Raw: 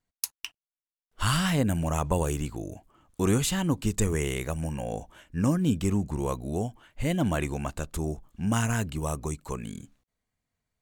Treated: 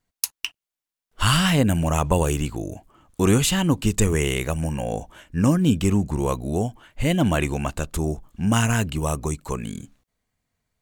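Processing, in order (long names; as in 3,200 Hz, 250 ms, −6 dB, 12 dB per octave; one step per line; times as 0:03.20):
dynamic equaliser 2,800 Hz, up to +4 dB, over −50 dBFS, Q 3.1
level +6 dB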